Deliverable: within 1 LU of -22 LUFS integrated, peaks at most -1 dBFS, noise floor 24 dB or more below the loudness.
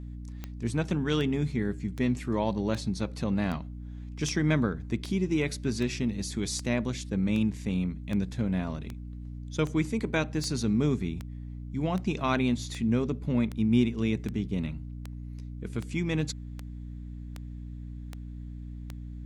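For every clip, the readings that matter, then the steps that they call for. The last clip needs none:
clicks 25; hum 60 Hz; harmonics up to 300 Hz; hum level -37 dBFS; loudness -29.5 LUFS; peak -11.5 dBFS; loudness target -22.0 LUFS
-> de-click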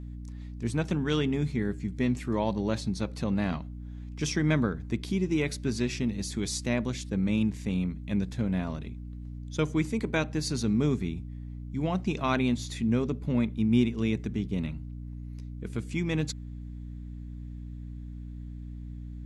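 clicks 0; hum 60 Hz; harmonics up to 300 Hz; hum level -37 dBFS
-> de-hum 60 Hz, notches 5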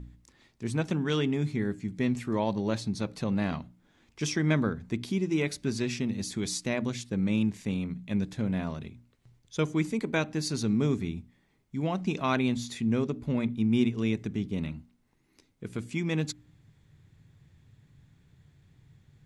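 hum none; loudness -30.5 LUFS; peak -11.5 dBFS; loudness target -22.0 LUFS
-> gain +8.5 dB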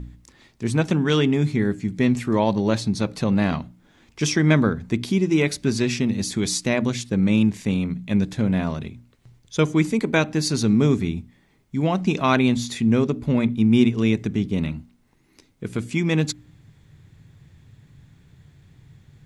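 loudness -22.0 LUFS; peak -3.0 dBFS; noise floor -60 dBFS

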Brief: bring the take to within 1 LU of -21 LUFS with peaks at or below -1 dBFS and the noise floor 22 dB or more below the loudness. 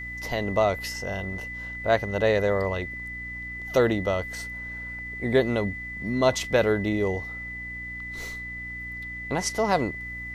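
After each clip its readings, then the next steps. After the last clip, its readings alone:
hum 60 Hz; harmonics up to 300 Hz; hum level -41 dBFS; steady tone 2000 Hz; tone level -34 dBFS; loudness -27.0 LUFS; peak -7.5 dBFS; loudness target -21.0 LUFS
-> de-hum 60 Hz, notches 5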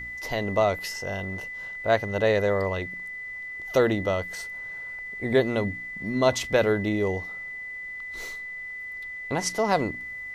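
hum none; steady tone 2000 Hz; tone level -34 dBFS
-> notch 2000 Hz, Q 30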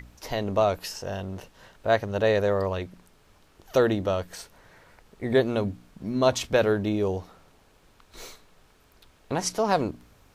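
steady tone none; loudness -26.0 LUFS; peak -8.0 dBFS; loudness target -21.0 LUFS
-> gain +5 dB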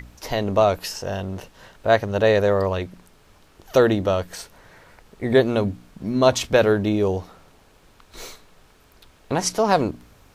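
loudness -21.0 LUFS; peak -3.0 dBFS; noise floor -54 dBFS

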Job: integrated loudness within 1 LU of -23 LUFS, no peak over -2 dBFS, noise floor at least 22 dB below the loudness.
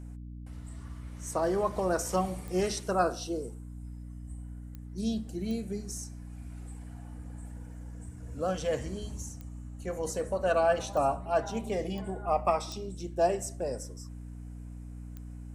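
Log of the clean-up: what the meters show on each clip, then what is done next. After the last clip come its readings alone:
clicks 8; hum 60 Hz; harmonics up to 300 Hz; hum level -40 dBFS; loudness -32.0 LUFS; peak -13.0 dBFS; loudness target -23.0 LUFS
-> de-click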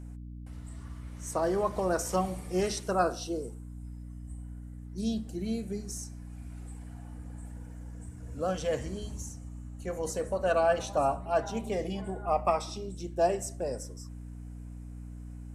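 clicks 0; hum 60 Hz; harmonics up to 300 Hz; hum level -40 dBFS
-> de-hum 60 Hz, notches 5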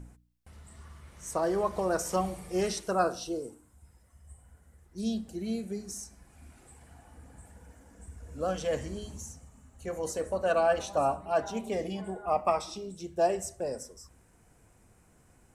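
hum none; loudness -31.5 LUFS; peak -13.0 dBFS; loudness target -23.0 LUFS
-> gain +8.5 dB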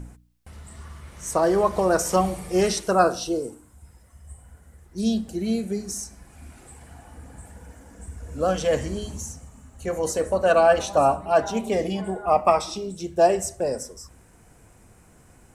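loudness -23.0 LUFS; peak -4.5 dBFS; noise floor -54 dBFS

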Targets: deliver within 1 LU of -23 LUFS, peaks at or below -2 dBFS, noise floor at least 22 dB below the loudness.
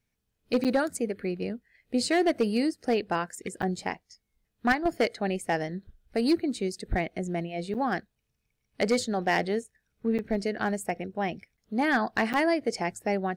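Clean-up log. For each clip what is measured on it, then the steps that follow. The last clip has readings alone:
clipped 0.4%; flat tops at -17.0 dBFS; dropouts 5; longest dropout 7.8 ms; loudness -29.0 LUFS; peak -17.0 dBFS; loudness target -23.0 LUFS
-> clip repair -17 dBFS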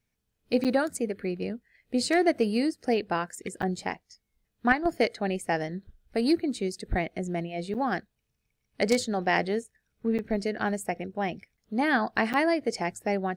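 clipped 0.0%; dropouts 5; longest dropout 7.8 ms
-> interpolate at 0.64/3.62/7.74/10.18/12.33, 7.8 ms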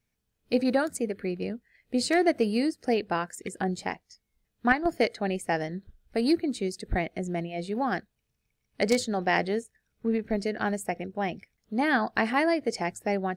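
dropouts 0; loudness -28.5 LUFS; peak -8.0 dBFS; loudness target -23.0 LUFS
-> gain +5.5 dB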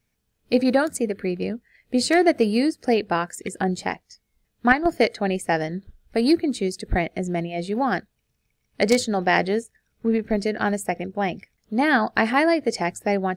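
loudness -23.0 LUFS; peak -2.5 dBFS; noise floor -74 dBFS

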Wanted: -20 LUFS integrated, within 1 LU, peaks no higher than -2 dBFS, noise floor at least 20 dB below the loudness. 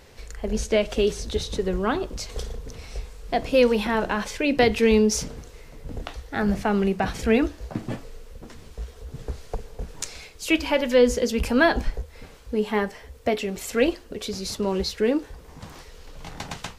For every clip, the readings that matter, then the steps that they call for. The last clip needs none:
loudness -24.0 LUFS; peak -5.0 dBFS; loudness target -20.0 LUFS
-> gain +4 dB; limiter -2 dBFS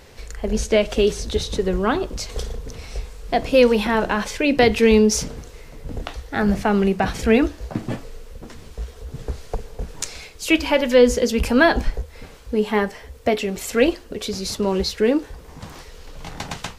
loudness -20.0 LUFS; peak -2.0 dBFS; noise floor -43 dBFS

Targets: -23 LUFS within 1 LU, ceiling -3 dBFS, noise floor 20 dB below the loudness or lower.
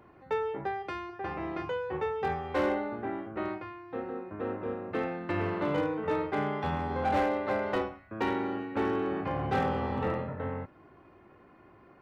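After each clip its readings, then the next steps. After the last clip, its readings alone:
clipped 0.8%; flat tops at -22.5 dBFS; loudness -32.5 LUFS; peak -22.5 dBFS; loudness target -23.0 LUFS
-> clip repair -22.5 dBFS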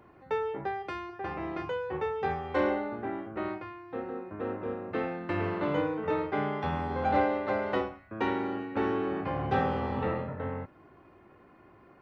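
clipped 0.0%; loudness -32.0 LUFS; peak -15.0 dBFS; loudness target -23.0 LUFS
-> gain +9 dB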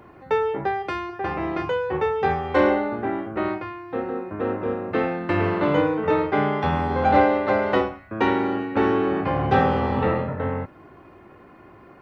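loudness -23.0 LUFS; peak -6.0 dBFS; noise floor -49 dBFS

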